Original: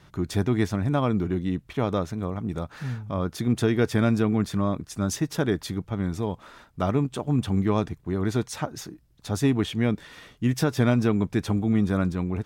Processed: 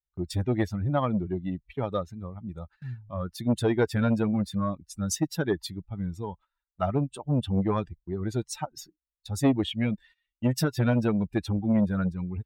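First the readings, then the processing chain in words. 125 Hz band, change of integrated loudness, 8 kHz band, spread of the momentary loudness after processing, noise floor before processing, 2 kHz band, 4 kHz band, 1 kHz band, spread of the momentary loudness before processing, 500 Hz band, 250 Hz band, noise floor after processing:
-3.0 dB, -2.5 dB, -0.5 dB, 13 LU, -57 dBFS, -4.0 dB, -2.0 dB, -2.0 dB, 10 LU, -2.5 dB, -3.0 dB, under -85 dBFS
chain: expander on every frequency bin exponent 2; gate -53 dBFS, range -19 dB; transformer saturation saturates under 380 Hz; trim +4 dB

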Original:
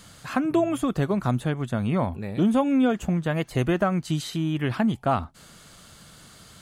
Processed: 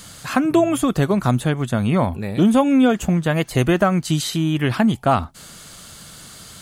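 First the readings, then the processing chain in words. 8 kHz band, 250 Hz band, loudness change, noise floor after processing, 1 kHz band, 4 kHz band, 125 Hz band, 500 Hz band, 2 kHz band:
+11.0 dB, +6.0 dB, +6.0 dB, -41 dBFS, +6.5 dB, +8.5 dB, +6.0 dB, +6.0 dB, +7.0 dB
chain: treble shelf 4.1 kHz +6.5 dB; trim +6 dB

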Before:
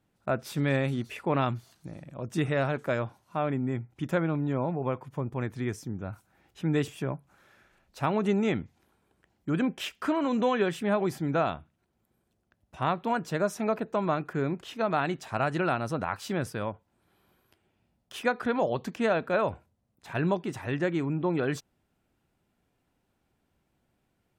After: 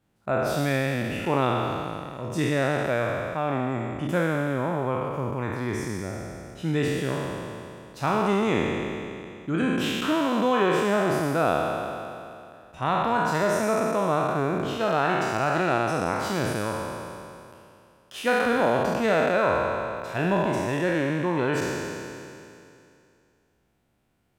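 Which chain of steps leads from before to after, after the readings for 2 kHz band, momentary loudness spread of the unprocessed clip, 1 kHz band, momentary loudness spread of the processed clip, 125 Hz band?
+6.5 dB, 10 LU, +6.5 dB, 13 LU, +2.5 dB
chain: spectral sustain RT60 2.58 s

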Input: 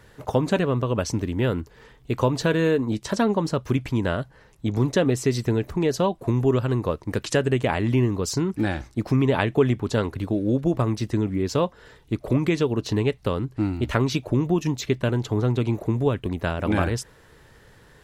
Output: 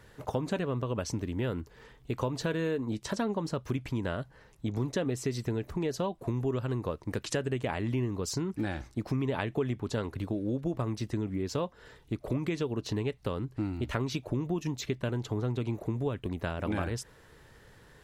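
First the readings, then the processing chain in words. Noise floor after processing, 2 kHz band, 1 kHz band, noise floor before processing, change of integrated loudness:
-58 dBFS, -9.5 dB, -9.5 dB, -53 dBFS, -9.5 dB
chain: compression 2:1, threshold -28 dBFS, peak gain reduction 8.5 dB; trim -4 dB

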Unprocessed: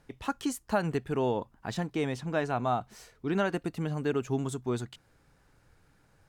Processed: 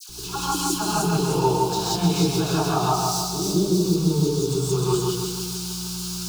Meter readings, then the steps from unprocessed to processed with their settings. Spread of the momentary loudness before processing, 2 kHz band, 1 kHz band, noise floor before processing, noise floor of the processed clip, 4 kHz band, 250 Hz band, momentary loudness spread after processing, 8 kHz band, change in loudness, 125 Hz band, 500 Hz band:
6 LU, +1.5 dB, +10.0 dB, -65 dBFS, -33 dBFS, +18.5 dB, +9.5 dB, 7 LU, +20.5 dB, +9.5 dB, +12.0 dB, +7.5 dB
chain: zero-crossing glitches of -30 dBFS; spectral selection erased 2.93–4.55 s, 650–3300 Hz; in parallel at -7 dB: bit crusher 6-bit; on the sum: mains buzz 60 Hz, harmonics 7, -39 dBFS -6 dB/octave; treble shelf 3.7 kHz -10 dB; phase dispersion lows, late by 94 ms, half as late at 1.4 kHz; compression, threshold -25 dBFS, peak gain reduction 7 dB; peaking EQ 4.9 kHz +13 dB 1.5 oct; static phaser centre 380 Hz, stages 8; on a send: two-band feedback delay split 3 kHz, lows 155 ms, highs 304 ms, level -3 dB; on the sum: gated-style reverb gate 200 ms rising, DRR -7 dB

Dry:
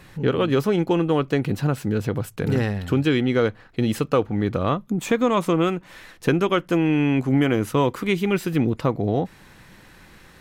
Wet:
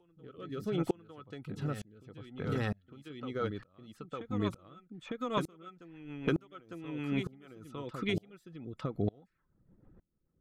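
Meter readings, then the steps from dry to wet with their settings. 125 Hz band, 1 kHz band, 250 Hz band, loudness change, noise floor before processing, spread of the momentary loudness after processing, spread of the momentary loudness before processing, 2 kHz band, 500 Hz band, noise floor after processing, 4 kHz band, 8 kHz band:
-15.5 dB, -16.0 dB, -16.5 dB, -15.0 dB, -50 dBFS, 17 LU, 5 LU, -15.5 dB, -17.0 dB, -77 dBFS, -14.0 dB, -19.0 dB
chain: level-controlled noise filter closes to 340 Hz, open at -18.5 dBFS; reverb removal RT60 0.51 s; compression, threshold -21 dBFS, peak gain reduction 7 dB; small resonant body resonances 1.3/3.4 kHz, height 13 dB, ringing for 40 ms; reverse echo 904 ms -8 dB; rotary cabinet horn 0.7 Hz, later 6.7 Hz, at 2.55 s; sawtooth tremolo in dB swelling 1.1 Hz, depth 32 dB; trim -1.5 dB

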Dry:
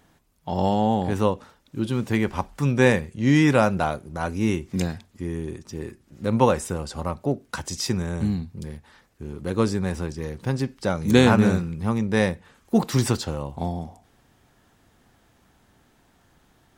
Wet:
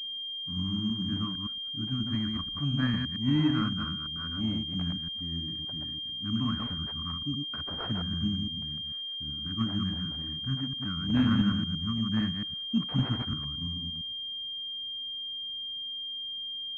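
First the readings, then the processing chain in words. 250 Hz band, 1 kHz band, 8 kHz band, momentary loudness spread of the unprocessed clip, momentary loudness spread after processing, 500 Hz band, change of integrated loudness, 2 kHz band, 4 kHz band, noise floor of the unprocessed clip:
-6.5 dB, -15.5 dB, under -25 dB, 16 LU, 7 LU, -25.5 dB, -7.0 dB, -13.0 dB, +8.5 dB, -62 dBFS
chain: chunks repeated in reverse 113 ms, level -3.5 dB; Chebyshev band-stop 310–1100 Hz, order 5; class-D stage that switches slowly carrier 3.2 kHz; trim -7.5 dB

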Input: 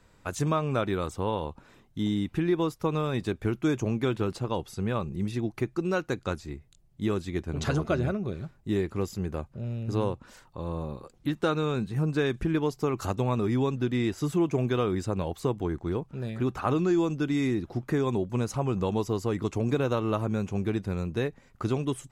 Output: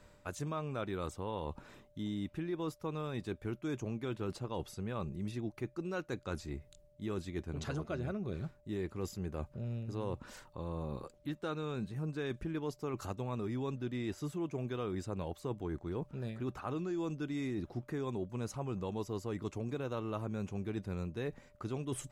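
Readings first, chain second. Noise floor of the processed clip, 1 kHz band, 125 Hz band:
-63 dBFS, -10.5 dB, -10.0 dB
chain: reverse; compression 4:1, threshold -37 dBFS, peak gain reduction 14 dB; reverse; whistle 590 Hz -66 dBFS

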